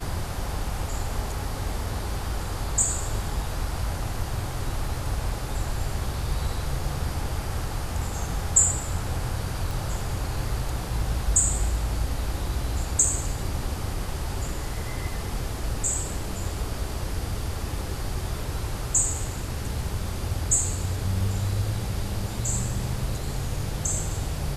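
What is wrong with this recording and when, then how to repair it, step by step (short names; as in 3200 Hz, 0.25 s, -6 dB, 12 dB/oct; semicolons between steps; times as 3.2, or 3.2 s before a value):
9.71 pop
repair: de-click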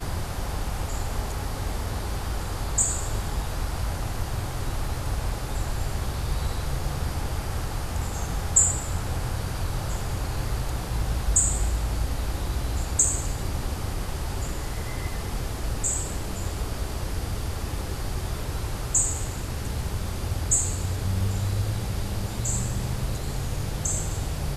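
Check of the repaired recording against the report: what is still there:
9.71 pop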